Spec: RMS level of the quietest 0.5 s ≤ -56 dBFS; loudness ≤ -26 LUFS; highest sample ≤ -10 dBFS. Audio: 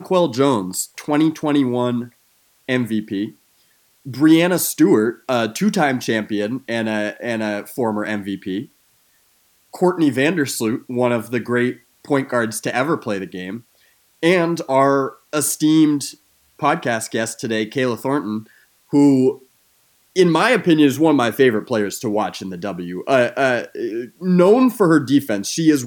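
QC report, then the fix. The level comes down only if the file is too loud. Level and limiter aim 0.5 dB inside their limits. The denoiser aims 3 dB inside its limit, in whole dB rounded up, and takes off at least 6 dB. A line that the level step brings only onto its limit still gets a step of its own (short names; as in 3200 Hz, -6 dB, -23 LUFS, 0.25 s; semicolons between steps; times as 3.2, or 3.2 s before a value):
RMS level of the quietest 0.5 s -59 dBFS: OK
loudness -18.5 LUFS: fail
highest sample -3.0 dBFS: fail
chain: gain -8 dB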